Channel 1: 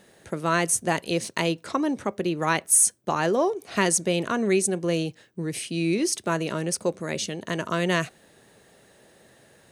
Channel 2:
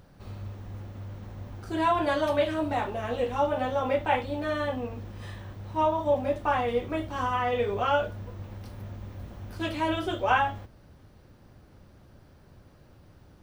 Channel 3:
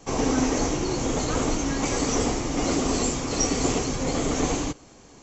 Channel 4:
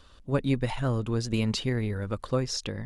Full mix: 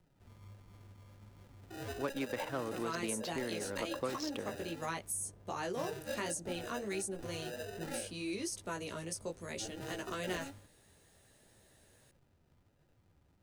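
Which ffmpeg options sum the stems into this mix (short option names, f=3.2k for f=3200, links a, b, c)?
-filter_complex "[0:a]flanger=delay=15:depth=3.4:speed=0.66,highshelf=f=3.9k:g=10,adelay=2400,volume=-11dB[a];[1:a]acrusher=samples=40:mix=1:aa=0.000001,flanger=delay=5.2:depth=9.2:regen=50:speed=1.4:shape=triangular,volume=-12dB[b];[3:a]highpass=240,adynamicsmooth=sensitivity=6.5:basefreq=1.3k,adelay=1700,volume=-2.5dB[c];[a][b][c]amix=inputs=3:normalize=0,acrossover=split=300|1000[d][e][f];[d]acompressor=threshold=-46dB:ratio=4[g];[e]acompressor=threshold=-37dB:ratio=4[h];[f]acompressor=threshold=-40dB:ratio=4[i];[g][h][i]amix=inputs=3:normalize=0"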